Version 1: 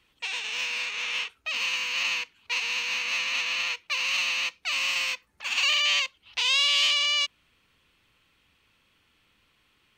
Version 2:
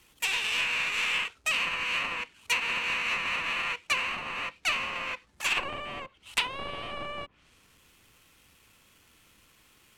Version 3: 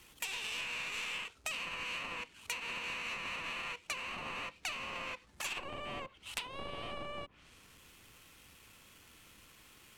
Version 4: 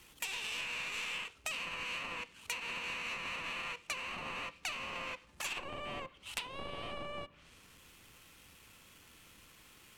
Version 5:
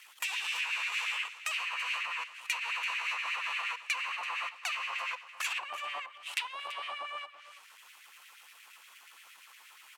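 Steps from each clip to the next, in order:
square wave that keeps the level; treble shelf 6 kHz +8.5 dB; low-pass that closes with the level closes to 720 Hz, closed at -15 dBFS
dynamic bell 1.8 kHz, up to -6 dB, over -42 dBFS, Q 0.74; compression 5:1, threshold -39 dBFS, peak gain reduction 13 dB; trim +1.5 dB
reverberation RT60 0.90 s, pre-delay 3 ms, DRR 18.5 dB
LFO high-pass sine 8.5 Hz 830–2200 Hz; in parallel at -10.5 dB: saturation -27.5 dBFS, distortion -17 dB; on the sum: delay 334 ms -15 dB

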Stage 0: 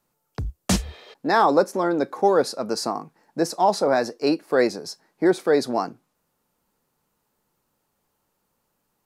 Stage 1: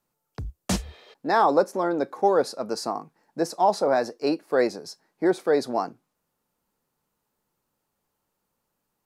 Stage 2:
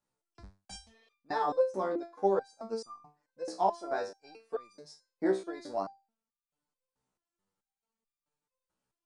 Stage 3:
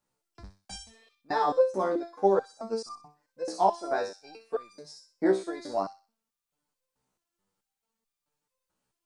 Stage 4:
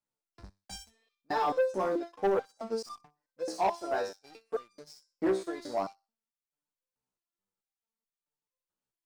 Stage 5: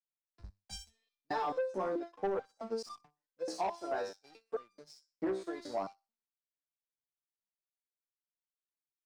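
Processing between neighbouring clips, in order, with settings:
dynamic bell 700 Hz, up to +4 dB, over -28 dBFS, Q 0.76; trim -5 dB
steep low-pass 10 kHz 72 dB/octave; transient shaper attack +2 dB, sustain -2 dB; resonator arpeggio 4.6 Hz 64–1200 Hz
feedback echo behind a high-pass 63 ms, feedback 32%, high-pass 3.5 kHz, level -4 dB; trim +4.5 dB
waveshaping leveller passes 2; trim -9 dB
treble shelf 9 kHz -9.5 dB; compression 10:1, threshold -30 dBFS, peak gain reduction 7.5 dB; three bands expanded up and down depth 40%; trim -1.5 dB

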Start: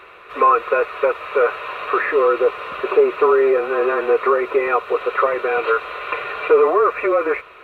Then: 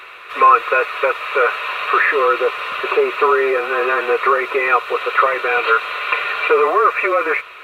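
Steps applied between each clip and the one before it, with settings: tilt shelf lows -8 dB; trim +3 dB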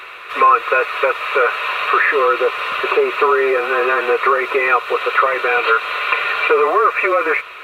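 compression 1.5:1, threshold -18 dBFS, peak gain reduction 4.5 dB; trim +3 dB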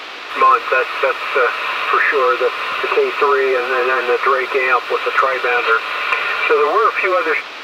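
band noise 290–3900 Hz -33 dBFS; hard clipper -3.5 dBFS, distortion -40 dB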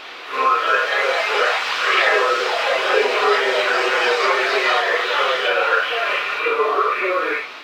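phase randomisation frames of 200 ms; ever faster or slower copies 336 ms, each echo +4 st, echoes 3; trim -4.5 dB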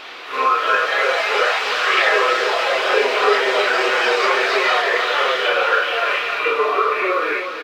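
delay 309 ms -8 dB

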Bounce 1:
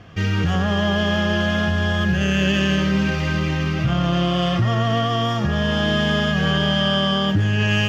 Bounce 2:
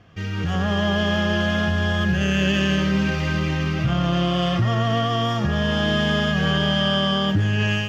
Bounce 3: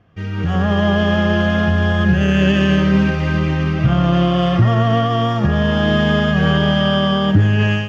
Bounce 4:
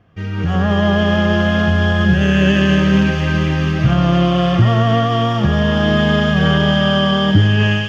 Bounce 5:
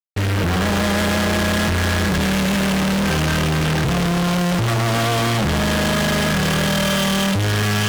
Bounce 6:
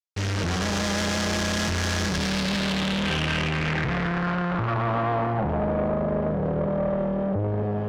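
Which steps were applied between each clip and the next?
level rider gain up to 9 dB; trim -8 dB
treble shelf 2.9 kHz -11.5 dB; upward expansion 1.5:1, over -39 dBFS; trim +8.5 dB
feedback echo behind a high-pass 227 ms, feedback 82%, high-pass 3.2 kHz, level -4.5 dB; trim +1 dB
fuzz box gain 41 dB, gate -42 dBFS; trim -4.5 dB
low-pass sweep 6.1 kHz -> 570 Hz, 2.03–6.00 s; valve stage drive 13 dB, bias 0.65; trim -4 dB

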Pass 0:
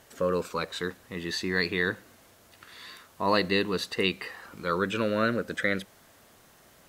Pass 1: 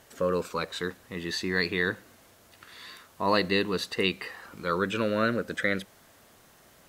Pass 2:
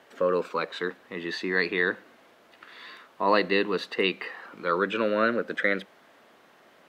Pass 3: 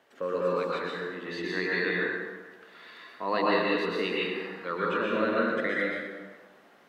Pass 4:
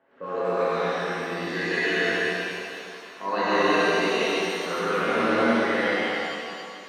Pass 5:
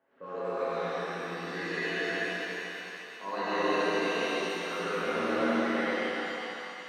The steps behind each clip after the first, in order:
no audible change
three-band isolator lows -23 dB, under 200 Hz, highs -17 dB, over 3.8 kHz; trim +3 dB
plate-style reverb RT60 1.4 s, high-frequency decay 0.65×, pre-delay 105 ms, DRR -5 dB; trim -8 dB
level-controlled noise filter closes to 1.7 kHz, open at -22.5 dBFS; pitch-shifted reverb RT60 2.2 s, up +7 st, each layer -8 dB, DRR -8.5 dB; trim -4.5 dB
two-band feedback delay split 860 Hz, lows 136 ms, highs 357 ms, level -5 dB; trim -8.5 dB

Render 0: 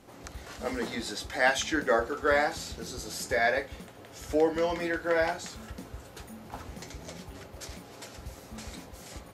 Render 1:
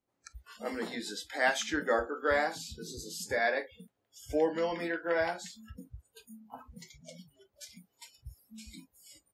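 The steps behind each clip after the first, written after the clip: spectral noise reduction 29 dB; trim -3.5 dB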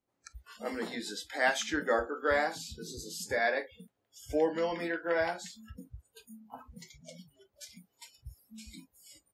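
no audible change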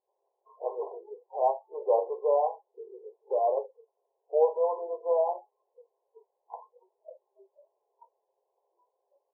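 brick-wall FIR band-pass 370–1100 Hz; trim +5.5 dB

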